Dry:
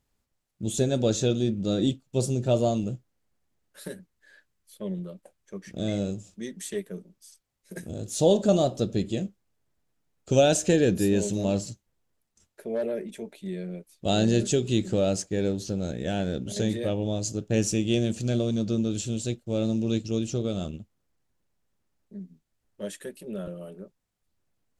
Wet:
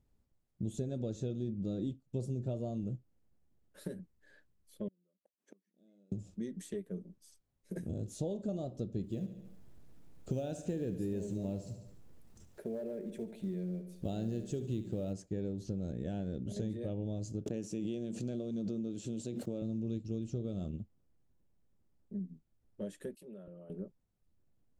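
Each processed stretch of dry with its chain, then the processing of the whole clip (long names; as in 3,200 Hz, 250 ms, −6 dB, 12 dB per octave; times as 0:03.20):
0:04.88–0:06.12: gate with flip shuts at −38 dBFS, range −38 dB + linear-phase brick-wall high-pass 180 Hz
0:09.03–0:15.13: upward compression, threshold −44 dBFS + log-companded quantiser 6 bits + repeating echo 72 ms, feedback 47%, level −12.5 dB
0:17.46–0:19.62: high-pass filter 200 Hz + background raised ahead of every attack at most 24 dB per second
0:23.15–0:23.70: low-shelf EQ 340 Hz −10 dB + downward compressor, threshold −47 dBFS + multiband upward and downward expander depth 100%
whole clip: downward compressor 4 to 1, threshold −38 dBFS; tilt shelving filter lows +7.5 dB, about 680 Hz; level −3.5 dB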